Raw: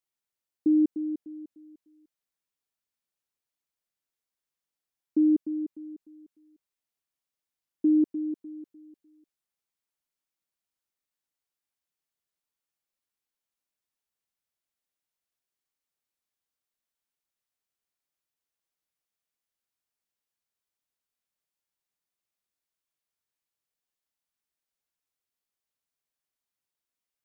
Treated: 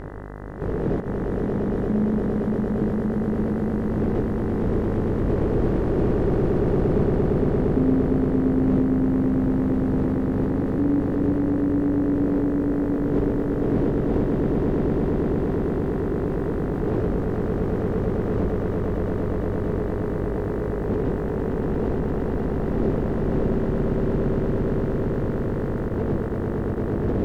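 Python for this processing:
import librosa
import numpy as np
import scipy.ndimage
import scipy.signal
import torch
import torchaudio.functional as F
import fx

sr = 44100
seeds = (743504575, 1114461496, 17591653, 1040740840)

p1 = fx.speed_glide(x, sr, from_pct=64, to_pct=136)
p2 = fx.dmg_wind(p1, sr, seeds[0], corner_hz=210.0, level_db=-45.0)
p3 = fx.peak_eq(p2, sr, hz=420.0, db=10.5, octaves=0.6)
p4 = fx.over_compress(p3, sr, threshold_db=-38.0, ratio=-1.0)
p5 = p4 + fx.echo_swell(p4, sr, ms=115, loudest=8, wet_db=-5.5, dry=0)
p6 = fx.dmg_buzz(p5, sr, base_hz=50.0, harmonics=40, level_db=-45.0, tilt_db=-5, odd_only=False)
p7 = fx.level_steps(p6, sr, step_db=20)
p8 = p6 + F.gain(torch.from_numpy(p7), 0.0).numpy()
p9 = fx.low_shelf(p8, sr, hz=180.0, db=-3.5)
p10 = fx.doppler_dist(p9, sr, depth_ms=0.13)
y = F.gain(torch.from_numpy(p10), 9.0).numpy()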